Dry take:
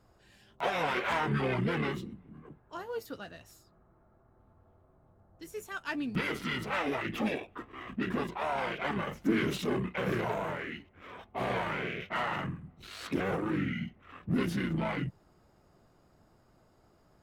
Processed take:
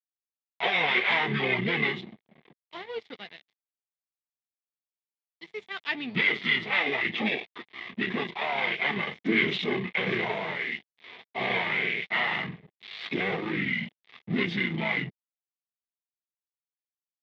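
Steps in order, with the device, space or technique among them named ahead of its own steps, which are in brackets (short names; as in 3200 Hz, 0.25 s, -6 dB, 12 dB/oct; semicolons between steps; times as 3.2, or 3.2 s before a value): blown loudspeaker (crossover distortion -48 dBFS; speaker cabinet 200–4200 Hz, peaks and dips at 290 Hz -8 dB, 560 Hz -8 dB, 990 Hz -4 dB, 1400 Hz -10 dB, 2100 Hz +10 dB, 3500 Hz +9 dB); gain +6.5 dB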